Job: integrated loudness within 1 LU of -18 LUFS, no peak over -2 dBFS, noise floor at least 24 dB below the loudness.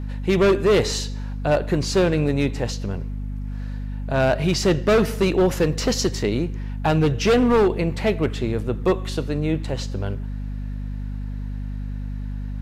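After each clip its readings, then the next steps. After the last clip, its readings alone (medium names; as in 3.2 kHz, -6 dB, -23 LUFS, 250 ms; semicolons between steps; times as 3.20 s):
hum 50 Hz; highest harmonic 250 Hz; hum level -26 dBFS; loudness -22.5 LUFS; peak level -10.0 dBFS; loudness target -18.0 LUFS
-> de-hum 50 Hz, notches 5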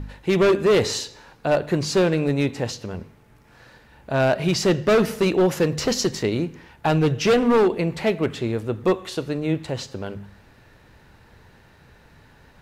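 hum not found; loudness -22.0 LUFS; peak level -10.0 dBFS; loudness target -18.0 LUFS
-> trim +4 dB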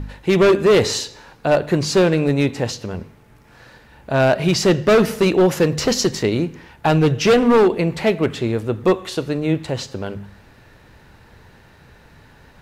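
loudness -18.0 LUFS; peak level -6.0 dBFS; noise floor -49 dBFS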